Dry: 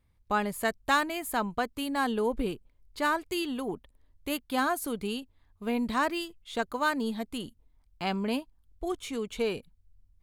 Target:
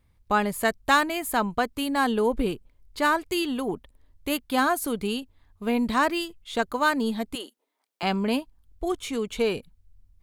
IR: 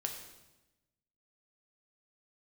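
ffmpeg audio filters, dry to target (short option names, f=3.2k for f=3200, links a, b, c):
-filter_complex "[0:a]asettb=1/sr,asplit=3[a][b][c];[a]atrim=end=7.354[d];[b]atrim=start=7.35:end=8.03,asetpts=PTS-STARTPTS,afade=t=in:d=0.004:c=qsin,afade=t=out:st=0.676:d=0.004:c=qsin,highpass=f=360:w=0.5412,highpass=f=360:w=1.3066[e];[c]atrim=start=8.026[f];[d][e]acrossfade=d=0.004:c1=hsin:c2=qsin[g];[g][f]acrossfade=d=0.004:c1=qsin:c2=hsin,volume=5dB"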